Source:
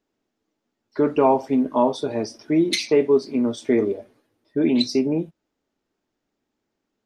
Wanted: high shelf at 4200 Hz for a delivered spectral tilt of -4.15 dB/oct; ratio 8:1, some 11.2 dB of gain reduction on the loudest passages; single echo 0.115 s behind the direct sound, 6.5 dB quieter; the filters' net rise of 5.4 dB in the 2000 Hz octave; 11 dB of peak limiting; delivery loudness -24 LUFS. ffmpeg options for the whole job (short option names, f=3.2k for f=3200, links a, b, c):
-af "equalizer=f=2k:t=o:g=7,highshelf=f=4.2k:g=-4,acompressor=threshold=-24dB:ratio=8,alimiter=limit=-24dB:level=0:latency=1,aecho=1:1:115:0.473,volume=9dB"